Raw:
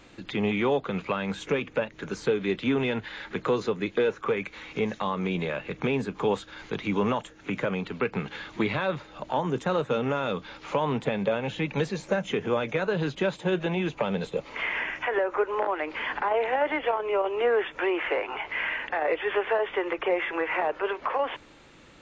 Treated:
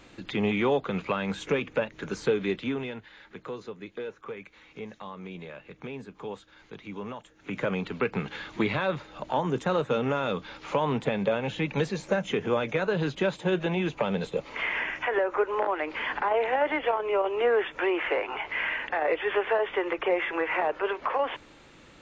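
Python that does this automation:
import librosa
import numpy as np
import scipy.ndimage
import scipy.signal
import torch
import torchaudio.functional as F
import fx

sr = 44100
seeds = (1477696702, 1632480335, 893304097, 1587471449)

y = fx.gain(x, sr, db=fx.line((2.43, 0.0), (3.07, -12.0), (7.2, -12.0), (7.67, 0.0)))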